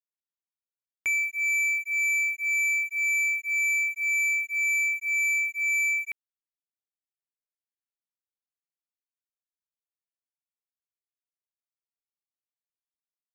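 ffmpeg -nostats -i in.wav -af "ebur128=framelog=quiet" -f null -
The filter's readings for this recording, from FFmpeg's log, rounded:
Integrated loudness:
  I:         -23.7 LUFS
  Threshold: -33.8 LUFS
Loudness range:
  LRA:         7.6 LU
  Threshold: -44.9 LUFS
  LRA low:   -30.9 LUFS
  LRA high:  -23.3 LUFS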